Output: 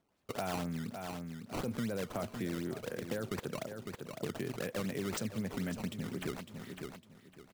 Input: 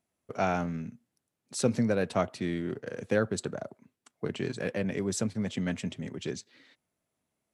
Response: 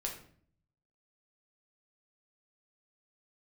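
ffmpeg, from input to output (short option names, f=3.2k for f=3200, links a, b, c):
-af "acrusher=samples=15:mix=1:aa=0.000001:lfo=1:lforange=24:lforate=4,alimiter=limit=-22.5dB:level=0:latency=1:release=17,aecho=1:1:555|1110|1665:0.224|0.0493|0.0108,acompressor=threshold=-44dB:ratio=2.5,volume=5dB"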